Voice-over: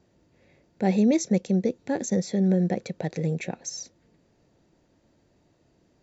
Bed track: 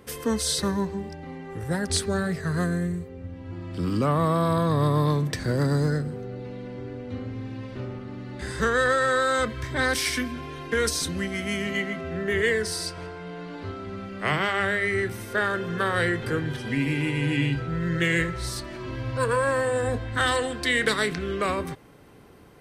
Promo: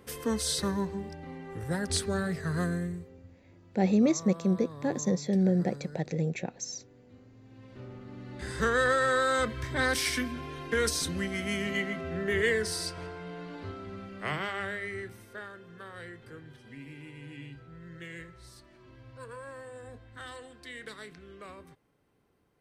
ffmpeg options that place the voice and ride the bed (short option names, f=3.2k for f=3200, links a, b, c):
-filter_complex "[0:a]adelay=2950,volume=-3dB[a];[1:a]volume=13.5dB,afade=t=out:st=2.68:d=0.72:silence=0.141254,afade=t=in:st=7.41:d=1.27:silence=0.125893,afade=t=out:st=13.12:d=2.43:silence=0.141254[b];[a][b]amix=inputs=2:normalize=0"